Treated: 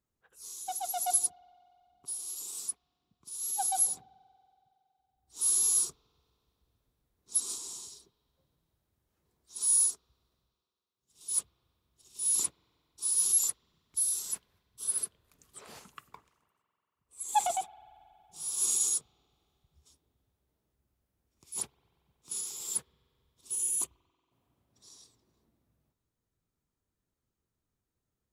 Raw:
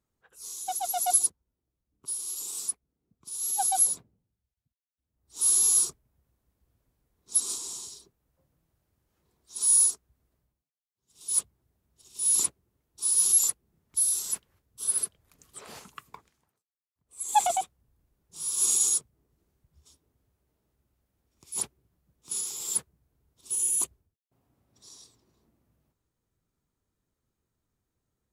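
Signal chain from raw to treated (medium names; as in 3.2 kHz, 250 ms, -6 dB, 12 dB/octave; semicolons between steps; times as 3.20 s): spring tank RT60 3.1 s, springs 46 ms, chirp 80 ms, DRR 20 dB; trim -4.5 dB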